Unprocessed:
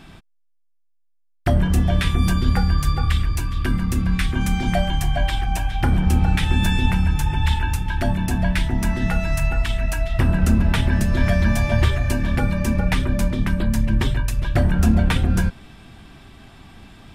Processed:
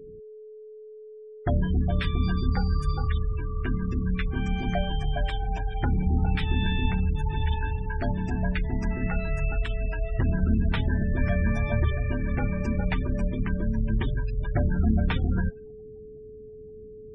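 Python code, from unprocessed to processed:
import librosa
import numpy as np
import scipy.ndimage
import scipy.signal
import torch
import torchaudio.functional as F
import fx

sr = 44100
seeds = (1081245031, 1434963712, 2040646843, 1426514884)

y = fx.env_lowpass(x, sr, base_hz=530.0, full_db=-15.0)
y = y + 10.0 ** (-35.0 / 20.0) * np.sin(2.0 * np.pi * 430.0 * np.arange(len(y)) / sr)
y = fx.spec_gate(y, sr, threshold_db=-25, keep='strong')
y = y * 10.0 ** (-6.5 / 20.0)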